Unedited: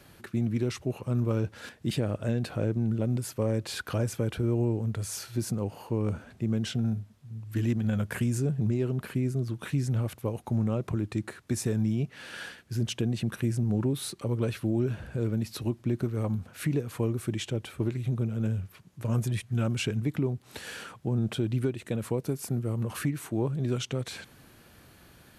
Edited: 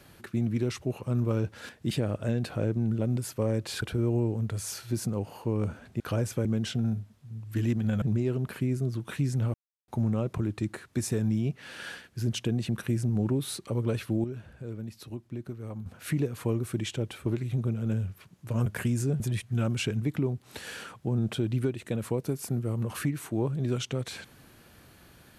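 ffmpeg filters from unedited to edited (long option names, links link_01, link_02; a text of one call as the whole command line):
ffmpeg -i in.wav -filter_complex "[0:a]asplit=11[link_01][link_02][link_03][link_04][link_05][link_06][link_07][link_08][link_09][link_10][link_11];[link_01]atrim=end=3.822[link_12];[link_02]atrim=start=4.268:end=6.452[link_13];[link_03]atrim=start=3.818:end=4.272[link_14];[link_04]atrim=start=6.448:end=8.022[link_15];[link_05]atrim=start=8.558:end=10.08,asetpts=PTS-STARTPTS,afade=type=out:start_time=1.518:duration=0.004:curve=hsin[link_16];[link_06]atrim=start=10.08:end=10.42,asetpts=PTS-STARTPTS,volume=0[link_17];[link_07]atrim=start=10.42:end=14.782,asetpts=PTS-STARTPTS,afade=type=in:duration=0.004:curve=hsin[link_18];[link_08]atrim=start=14.778:end=16.402,asetpts=PTS-STARTPTS,volume=-9dB[link_19];[link_09]atrim=start=16.398:end=19.202[link_20];[link_10]atrim=start=8.018:end=8.562[link_21];[link_11]atrim=start=19.198[link_22];[link_12][link_13]acrossfade=duration=0.004:curve1=hsin:curve2=hsin[link_23];[link_23][link_14]acrossfade=duration=0.004:curve1=hsin:curve2=hsin[link_24];[link_24][link_15]acrossfade=duration=0.004:curve1=hsin:curve2=hsin[link_25];[link_16][link_17][link_18]concat=n=3:v=0:a=1[link_26];[link_25][link_26]acrossfade=duration=0.004:curve1=hsin:curve2=hsin[link_27];[link_27][link_19]acrossfade=duration=0.004:curve1=hsin:curve2=hsin[link_28];[link_28][link_20]acrossfade=duration=0.004:curve1=hsin:curve2=hsin[link_29];[link_29][link_21]acrossfade=duration=0.004:curve1=hsin:curve2=hsin[link_30];[link_30][link_22]acrossfade=duration=0.004:curve1=hsin:curve2=hsin" out.wav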